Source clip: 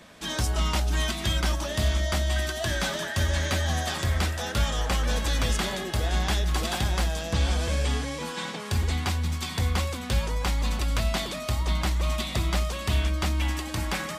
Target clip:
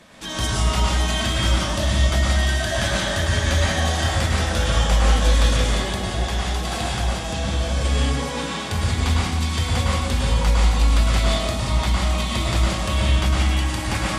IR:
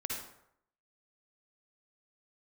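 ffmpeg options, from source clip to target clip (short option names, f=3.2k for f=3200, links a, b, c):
-filter_complex "[0:a]asettb=1/sr,asplit=3[a][b][c];[a]atrim=end=5.504[d];[b]atrim=start=5.5:end=7.81,asetpts=PTS-STARTPTS,afade=t=in:d=0.004:c=qsin,afade=t=out:st=2.306:d=0.004:c=qsin,acompressor=threshold=-27dB:ratio=2.5[e];[c]atrim=start=7.806[f];[d][e]acrossfade=d=0.004:c1=hsin:c2=qsin[g];[g][f]acrossfade=d=0.004:c1=qsin:c2=hsin[h];[1:a]atrim=start_sample=2205,asetrate=22491,aresample=44100[i];[h][i]afir=irnorm=-1:irlink=0"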